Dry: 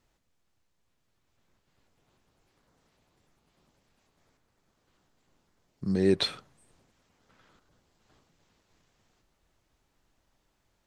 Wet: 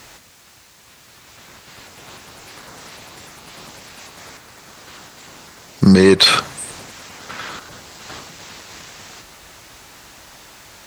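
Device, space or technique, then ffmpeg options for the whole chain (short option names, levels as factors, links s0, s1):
mastering chain: -af "highpass=58,equalizer=f=3200:t=o:w=0.28:g=-2,acompressor=threshold=0.0224:ratio=2,asoftclip=type=tanh:threshold=0.0841,tiltshelf=f=740:g=-5.5,asoftclip=type=hard:threshold=0.0944,alimiter=level_in=39.8:limit=0.891:release=50:level=0:latency=1,volume=0.891"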